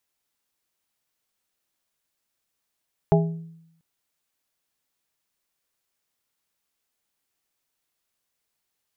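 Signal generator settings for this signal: glass hit plate, length 0.69 s, lowest mode 164 Hz, modes 4, decay 0.82 s, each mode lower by 2.5 dB, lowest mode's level -14 dB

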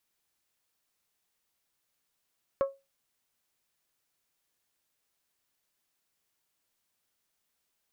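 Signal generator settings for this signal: glass hit bell, lowest mode 548 Hz, decay 0.24 s, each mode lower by 9 dB, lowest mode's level -20 dB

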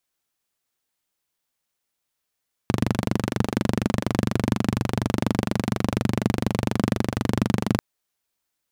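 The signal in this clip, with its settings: single-cylinder engine model, steady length 5.09 s, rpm 2900, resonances 120/200 Hz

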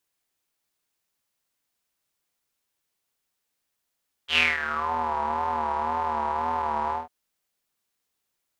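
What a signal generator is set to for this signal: synth patch with vibrato D#2, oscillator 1 square, interval +19 st, detune 27 cents, filter bandpass, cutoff 810 Hz, Q 7.9, filter envelope 2 oct, filter decay 0.62 s, filter sustain 10%, attack 91 ms, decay 0.20 s, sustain -12 dB, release 0.16 s, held 2.64 s, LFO 1.9 Hz, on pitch 74 cents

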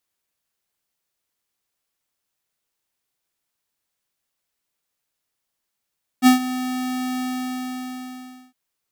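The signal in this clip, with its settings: ADSR square 254 Hz, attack 46 ms, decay 0.12 s, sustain -15.5 dB, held 0.98 s, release 1.33 s -10 dBFS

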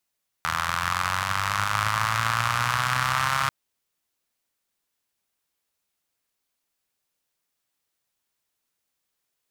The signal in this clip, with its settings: four-cylinder engine model, changing speed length 3.04 s, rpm 2400, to 4100, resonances 110/1200 Hz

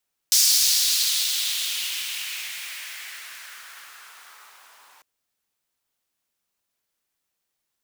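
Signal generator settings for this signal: swept filtered noise pink, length 4.70 s highpass, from 5400 Hz, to 930 Hz, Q 2.2, exponential, gain ramp -39 dB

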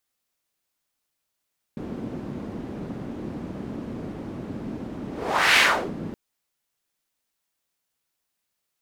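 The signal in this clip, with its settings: whoosh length 4.37 s, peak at 3.81, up 0.53 s, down 0.38 s, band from 240 Hz, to 2300 Hz, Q 1.7, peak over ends 17 dB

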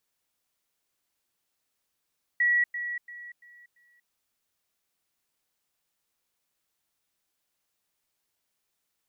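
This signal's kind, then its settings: level ladder 1930 Hz -20 dBFS, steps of -10 dB, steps 5, 0.24 s 0.10 s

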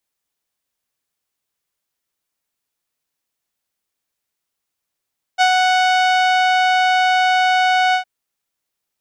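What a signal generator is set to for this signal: synth note saw F#5 12 dB/oct, low-pass 3600 Hz, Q 0.86, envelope 0.5 oct, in 1.09 s, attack 33 ms, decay 0.07 s, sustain -3 dB, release 0.10 s, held 2.56 s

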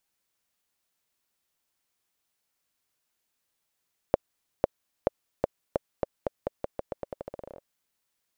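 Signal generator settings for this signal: bouncing ball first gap 0.50 s, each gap 0.86, 561 Hz, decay 19 ms -6 dBFS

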